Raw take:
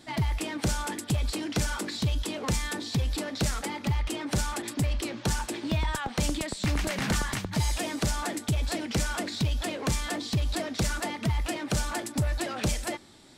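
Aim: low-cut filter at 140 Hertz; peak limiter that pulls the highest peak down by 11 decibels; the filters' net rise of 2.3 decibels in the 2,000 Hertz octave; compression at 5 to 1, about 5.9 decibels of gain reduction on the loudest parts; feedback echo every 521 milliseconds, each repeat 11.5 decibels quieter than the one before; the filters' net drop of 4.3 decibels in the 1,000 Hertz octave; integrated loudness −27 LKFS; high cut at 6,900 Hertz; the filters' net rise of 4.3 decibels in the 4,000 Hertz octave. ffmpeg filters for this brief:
ffmpeg -i in.wav -af "highpass=140,lowpass=6900,equalizer=frequency=1000:width_type=o:gain=-7,equalizer=frequency=2000:width_type=o:gain=4,equalizer=frequency=4000:width_type=o:gain=5,acompressor=threshold=-31dB:ratio=5,alimiter=level_in=4.5dB:limit=-24dB:level=0:latency=1,volume=-4.5dB,aecho=1:1:521|1042|1563:0.266|0.0718|0.0194,volume=10dB" out.wav

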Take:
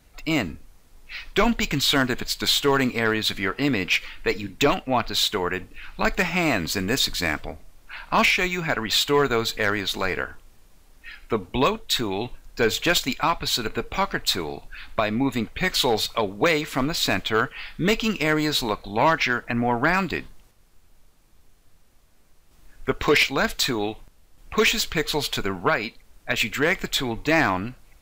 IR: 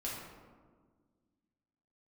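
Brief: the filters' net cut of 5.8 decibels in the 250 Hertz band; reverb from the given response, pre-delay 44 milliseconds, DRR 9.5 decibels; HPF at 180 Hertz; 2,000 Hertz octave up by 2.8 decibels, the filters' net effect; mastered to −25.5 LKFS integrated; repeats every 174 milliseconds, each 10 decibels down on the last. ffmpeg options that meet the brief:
-filter_complex "[0:a]highpass=180,equalizer=frequency=250:width_type=o:gain=-6,equalizer=frequency=2000:width_type=o:gain=3.5,aecho=1:1:174|348|522|696:0.316|0.101|0.0324|0.0104,asplit=2[link_01][link_02];[1:a]atrim=start_sample=2205,adelay=44[link_03];[link_02][link_03]afir=irnorm=-1:irlink=0,volume=-11dB[link_04];[link_01][link_04]amix=inputs=2:normalize=0,volume=-4dB"

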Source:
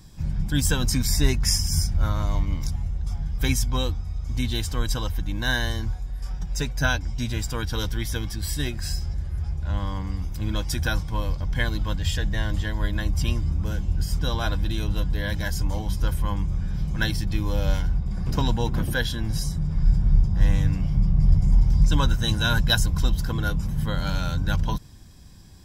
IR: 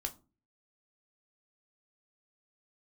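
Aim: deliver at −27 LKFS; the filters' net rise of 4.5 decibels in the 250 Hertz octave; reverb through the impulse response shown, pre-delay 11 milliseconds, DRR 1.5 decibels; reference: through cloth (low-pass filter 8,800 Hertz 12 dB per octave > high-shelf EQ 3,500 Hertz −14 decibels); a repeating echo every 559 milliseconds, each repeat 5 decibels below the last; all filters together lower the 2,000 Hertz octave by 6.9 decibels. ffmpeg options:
-filter_complex "[0:a]equalizer=frequency=250:width_type=o:gain=6.5,equalizer=frequency=2000:width_type=o:gain=-6.5,aecho=1:1:559|1118|1677|2236|2795|3354|3913:0.562|0.315|0.176|0.0988|0.0553|0.031|0.0173,asplit=2[link_01][link_02];[1:a]atrim=start_sample=2205,adelay=11[link_03];[link_02][link_03]afir=irnorm=-1:irlink=0,volume=-1dB[link_04];[link_01][link_04]amix=inputs=2:normalize=0,lowpass=8800,highshelf=frequency=3500:gain=-14,volume=-7dB"

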